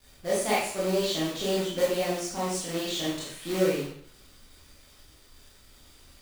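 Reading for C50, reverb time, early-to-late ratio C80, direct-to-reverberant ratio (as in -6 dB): 1.0 dB, 0.65 s, 5.0 dB, -8.0 dB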